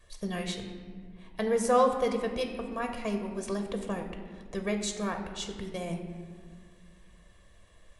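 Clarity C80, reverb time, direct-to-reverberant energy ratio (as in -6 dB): 8.5 dB, 1.9 s, 4.5 dB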